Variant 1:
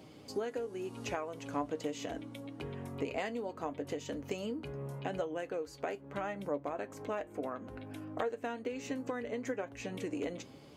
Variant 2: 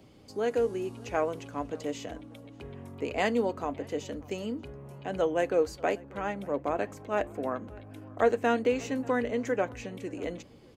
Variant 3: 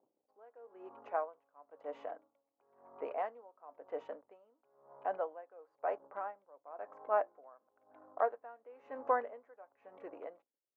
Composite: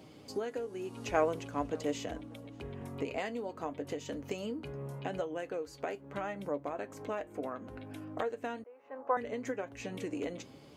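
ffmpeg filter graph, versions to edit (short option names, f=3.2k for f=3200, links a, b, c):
-filter_complex "[0:a]asplit=3[a][b][c];[a]atrim=end=1.112[d];[1:a]atrim=start=1.108:end=2.812[e];[b]atrim=start=2.808:end=8.642[f];[2:a]atrim=start=8.638:end=9.172[g];[c]atrim=start=9.168[h];[d][e]acrossfade=d=0.004:c1=hsin:c2=hsin[i];[i][f]acrossfade=d=0.004:c1=hsin:c2=hsin[j];[j][g]acrossfade=d=0.004:c1=hsin:c2=hsin[k];[k][h]acrossfade=d=0.004:c1=hsin:c2=hsin"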